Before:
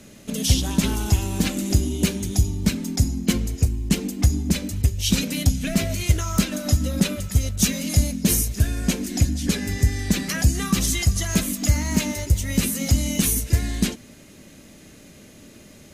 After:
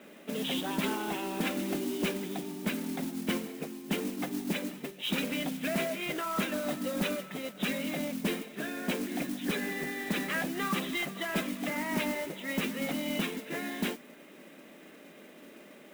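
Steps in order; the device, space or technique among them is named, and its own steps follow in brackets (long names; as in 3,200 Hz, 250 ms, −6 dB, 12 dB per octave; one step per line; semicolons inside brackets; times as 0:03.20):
brick-wall band-pass 150–4,000 Hz
carbon microphone (band-pass filter 330–2,600 Hz; soft clipping −23 dBFS, distortion −15 dB; noise that follows the level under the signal 12 dB)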